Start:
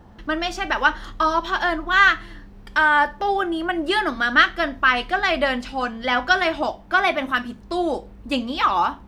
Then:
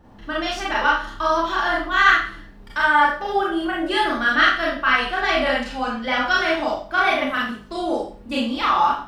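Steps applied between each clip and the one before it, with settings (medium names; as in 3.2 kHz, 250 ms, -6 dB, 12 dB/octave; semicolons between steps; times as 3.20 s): Schroeder reverb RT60 0.43 s, combs from 27 ms, DRR -5 dB; trim -5.5 dB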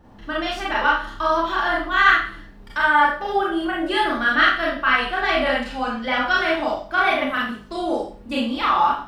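dynamic bell 6 kHz, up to -7 dB, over -46 dBFS, Q 1.9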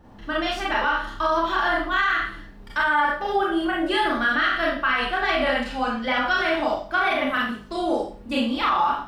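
peak limiter -12.5 dBFS, peak gain reduction 11 dB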